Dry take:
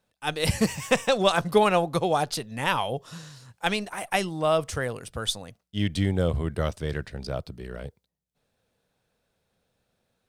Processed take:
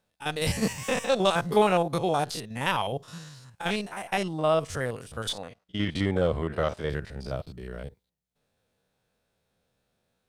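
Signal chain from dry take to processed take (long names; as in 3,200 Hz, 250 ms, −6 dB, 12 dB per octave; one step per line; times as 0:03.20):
spectrum averaged block by block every 50 ms
0:03.89–0:04.66: high-shelf EQ 6,800 Hz −7 dB
0:05.29–0:06.90: mid-hump overdrive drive 14 dB, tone 1,700 Hz, clips at −12 dBFS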